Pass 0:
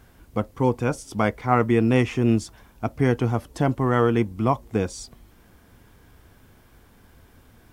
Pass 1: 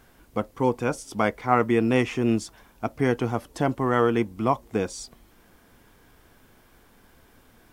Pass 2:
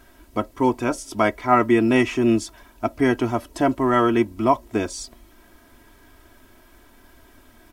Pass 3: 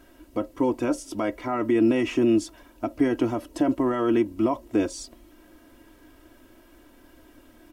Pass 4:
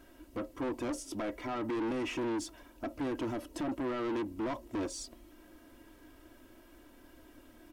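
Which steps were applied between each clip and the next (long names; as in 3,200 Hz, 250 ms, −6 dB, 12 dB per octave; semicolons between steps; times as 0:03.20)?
parametric band 77 Hz −9 dB 2.2 octaves
comb filter 3.1 ms, depth 71%; level +2.5 dB
brickwall limiter −13.5 dBFS, peak gain reduction 10.5 dB; hollow resonant body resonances 310/510/2,800 Hz, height 11 dB, ringing for 45 ms; level −4.5 dB
soft clipping −27.5 dBFS, distortion −6 dB; level −4 dB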